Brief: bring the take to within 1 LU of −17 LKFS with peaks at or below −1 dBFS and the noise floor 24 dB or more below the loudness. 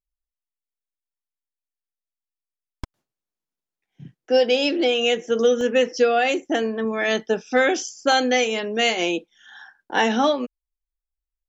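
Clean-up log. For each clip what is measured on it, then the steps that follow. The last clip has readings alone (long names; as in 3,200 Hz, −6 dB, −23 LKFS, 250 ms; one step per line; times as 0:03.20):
number of dropouts 2; longest dropout 1.5 ms; integrated loudness −21.0 LKFS; sample peak −7.0 dBFS; target loudness −17.0 LKFS
→ repair the gap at 0:05.61/0:08.12, 1.5 ms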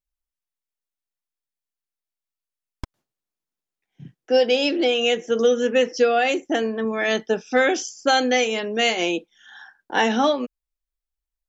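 number of dropouts 0; integrated loudness −21.0 LKFS; sample peak −7.0 dBFS; target loudness −17.0 LKFS
→ level +4 dB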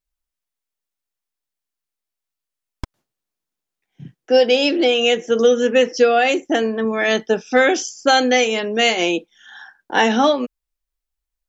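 integrated loudness −17.0 LKFS; sample peak −3.0 dBFS; background noise floor −85 dBFS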